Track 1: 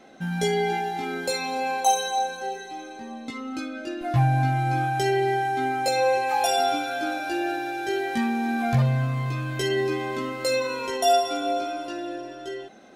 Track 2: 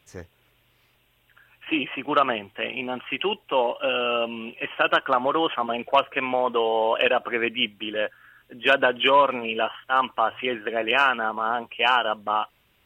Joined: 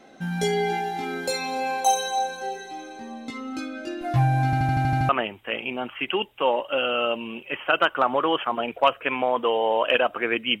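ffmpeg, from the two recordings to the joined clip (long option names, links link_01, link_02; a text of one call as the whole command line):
ffmpeg -i cue0.wav -i cue1.wav -filter_complex "[0:a]apad=whole_dur=10.6,atrim=end=10.6,asplit=8[link_01][link_02][link_03][link_04][link_05][link_06][link_07][link_08];[link_01]atrim=end=4.532[link_09];[link_02]atrim=start=4.448:end=4.532[link_10];[link_03]atrim=start=4.448:end=4.532[link_11];[link_04]atrim=start=4.448:end=4.532[link_12];[link_05]atrim=start=4.448:end=4.532[link_13];[link_06]atrim=start=4.448:end=4.532[link_14];[link_07]atrim=start=4.448:end=4.532[link_15];[link_08]atrim=start=4.448:end=4.532[link_16];[1:a]atrim=start=2.198:end=7.71[link_17];[link_09][link_10]acrossfade=duration=0.004:curve1=hsin:curve2=hsin[link_18];[link_18][link_11]acrossfade=duration=0.004:curve1=hsin:curve2=hsin[link_19];[link_19][link_12]acrossfade=duration=0.004:curve1=hsin:curve2=hsin[link_20];[link_20][link_13]acrossfade=duration=0.004:curve1=hsin:curve2=hsin[link_21];[link_21][link_14]acrossfade=duration=0.004:curve1=hsin:curve2=hsin[link_22];[link_22][link_15]acrossfade=duration=0.004:curve1=hsin:curve2=hsin[link_23];[link_23][link_16]acrossfade=duration=0.004:curve1=hsin:curve2=hsin[link_24];[link_24][link_17]acrossfade=duration=0.004:curve1=hsin:curve2=hsin" out.wav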